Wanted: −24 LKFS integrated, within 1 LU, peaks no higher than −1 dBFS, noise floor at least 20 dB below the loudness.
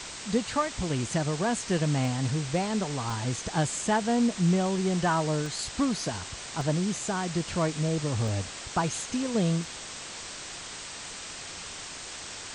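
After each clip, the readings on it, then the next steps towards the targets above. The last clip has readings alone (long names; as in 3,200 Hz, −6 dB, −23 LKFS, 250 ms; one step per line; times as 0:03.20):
number of dropouts 6; longest dropout 1.2 ms; background noise floor −41 dBFS; target noise floor −50 dBFS; integrated loudness −29.5 LKFS; sample peak −14.0 dBFS; target loudness −24.0 LKFS
→ repair the gap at 0:02.05/0:03.10/0:05.46/0:06.61/0:08.28/0:09.64, 1.2 ms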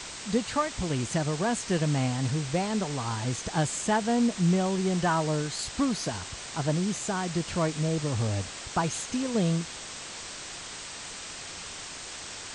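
number of dropouts 0; background noise floor −41 dBFS; target noise floor −50 dBFS
→ broadband denoise 9 dB, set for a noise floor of −41 dBFS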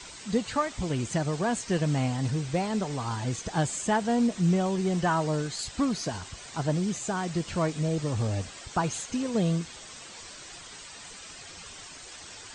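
background noise floor −45 dBFS; target noise floor −49 dBFS
→ broadband denoise 6 dB, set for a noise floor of −45 dBFS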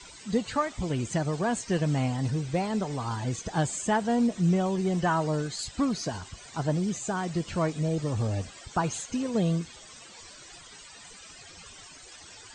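background noise floor −49 dBFS; integrated loudness −29.0 LKFS; sample peak −14.5 dBFS; target loudness −24.0 LKFS
→ level +5 dB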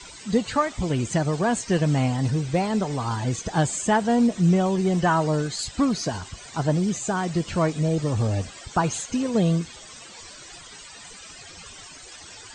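integrated loudness −24.0 LKFS; sample peak −9.5 dBFS; background noise floor −44 dBFS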